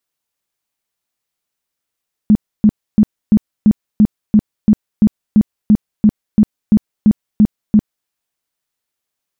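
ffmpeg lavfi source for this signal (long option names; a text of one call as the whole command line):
ffmpeg -f lavfi -i "aevalsrc='0.596*sin(2*PI*212*mod(t,0.34))*lt(mod(t,0.34),11/212)':duration=5.78:sample_rate=44100" out.wav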